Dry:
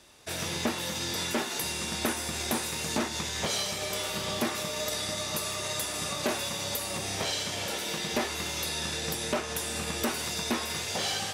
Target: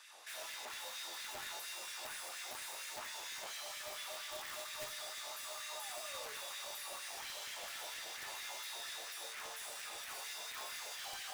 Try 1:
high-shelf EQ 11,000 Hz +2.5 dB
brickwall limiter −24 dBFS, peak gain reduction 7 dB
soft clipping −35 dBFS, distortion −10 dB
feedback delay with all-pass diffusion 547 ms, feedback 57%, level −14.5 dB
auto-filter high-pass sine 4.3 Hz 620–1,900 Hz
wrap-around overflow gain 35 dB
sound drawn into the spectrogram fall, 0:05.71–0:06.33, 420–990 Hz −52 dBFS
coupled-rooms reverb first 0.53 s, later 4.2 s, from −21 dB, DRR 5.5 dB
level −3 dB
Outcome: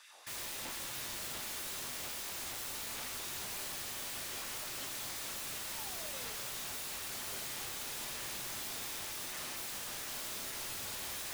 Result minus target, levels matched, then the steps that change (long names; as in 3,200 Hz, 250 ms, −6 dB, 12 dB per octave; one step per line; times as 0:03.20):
soft clipping: distortion −5 dB
change: soft clipping −44 dBFS, distortion −5 dB